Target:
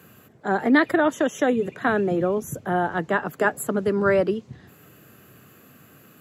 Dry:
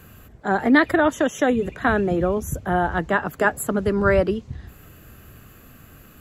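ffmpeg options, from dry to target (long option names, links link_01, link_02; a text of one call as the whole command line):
ffmpeg -i in.wav -af "highpass=frequency=120:width=0.5412,highpass=frequency=120:width=1.3066,equalizer=frequency=420:width_type=o:width=0.77:gain=2.5,volume=-2.5dB" out.wav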